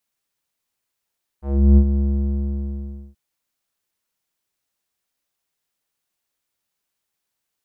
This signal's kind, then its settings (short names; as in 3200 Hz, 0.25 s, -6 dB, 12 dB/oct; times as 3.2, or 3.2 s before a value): synth note square C#2 12 dB/oct, low-pass 250 Hz, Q 1.3, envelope 2 oct, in 0.19 s, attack 0.351 s, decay 0.07 s, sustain -9 dB, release 1.16 s, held 0.57 s